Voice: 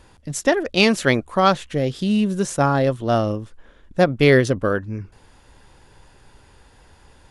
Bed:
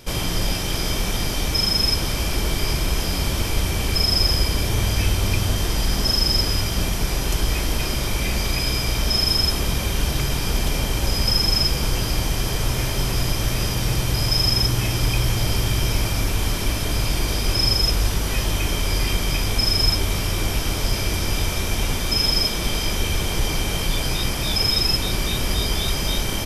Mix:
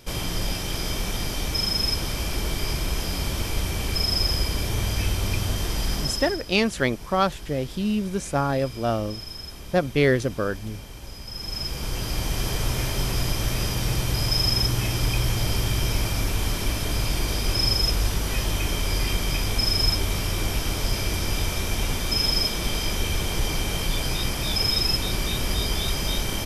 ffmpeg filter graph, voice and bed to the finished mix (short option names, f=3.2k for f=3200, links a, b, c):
-filter_complex "[0:a]adelay=5750,volume=-5.5dB[a];[1:a]volume=10.5dB,afade=t=out:st=5.93:d=0.47:silence=0.211349,afade=t=in:st=11.29:d=1.15:silence=0.177828[b];[a][b]amix=inputs=2:normalize=0"